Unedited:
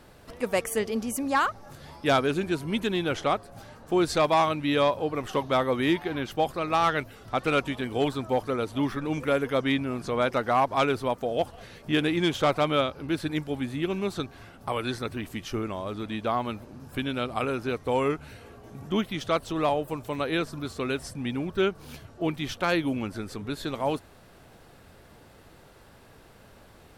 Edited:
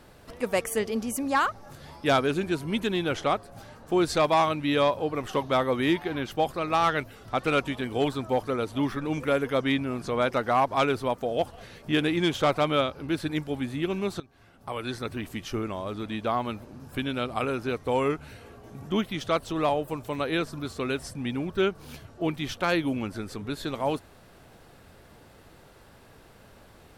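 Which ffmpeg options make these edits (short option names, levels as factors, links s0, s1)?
-filter_complex "[0:a]asplit=2[s0][s1];[s0]atrim=end=14.2,asetpts=PTS-STARTPTS,afade=t=out:st=14.196:d=0.004:c=hsin:silence=0.1[s2];[s1]atrim=start=14.2,asetpts=PTS-STARTPTS,afade=t=in:d=0.95:silence=0.1[s3];[s2][s3]concat=n=2:v=0:a=1"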